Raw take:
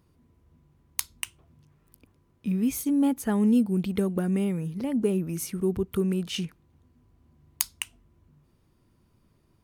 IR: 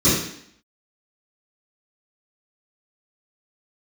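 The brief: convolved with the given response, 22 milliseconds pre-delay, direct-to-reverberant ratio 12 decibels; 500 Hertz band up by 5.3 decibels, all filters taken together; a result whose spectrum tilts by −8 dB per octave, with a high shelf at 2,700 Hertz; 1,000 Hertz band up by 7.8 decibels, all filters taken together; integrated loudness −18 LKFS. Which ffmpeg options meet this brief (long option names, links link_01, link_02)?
-filter_complex "[0:a]equalizer=frequency=500:width_type=o:gain=6,equalizer=frequency=1000:width_type=o:gain=8.5,highshelf=frequency=2700:gain=-5.5,asplit=2[link_01][link_02];[1:a]atrim=start_sample=2205,adelay=22[link_03];[link_02][link_03]afir=irnorm=-1:irlink=0,volume=-31.5dB[link_04];[link_01][link_04]amix=inputs=2:normalize=0,volume=4.5dB"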